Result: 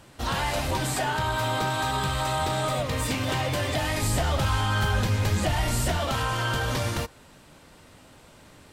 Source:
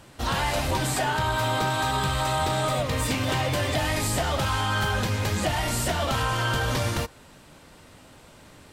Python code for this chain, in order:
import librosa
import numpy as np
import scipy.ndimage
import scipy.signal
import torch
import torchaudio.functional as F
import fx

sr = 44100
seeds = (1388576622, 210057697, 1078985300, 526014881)

y = fx.low_shelf(x, sr, hz=110.0, db=8.5, at=(4.02, 5.98))
y = y * 10.0 ** (-1.5 / 20.0)